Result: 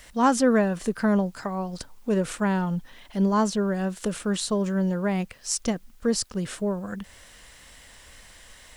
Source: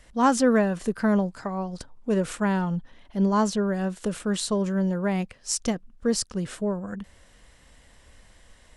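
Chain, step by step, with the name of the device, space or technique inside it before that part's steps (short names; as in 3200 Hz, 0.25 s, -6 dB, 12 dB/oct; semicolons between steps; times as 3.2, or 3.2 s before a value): noise-reduction cassette on a plain deck (mismatched tape noise reduction encoder only; wow and flutter 15 cents; white noise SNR 39 dB)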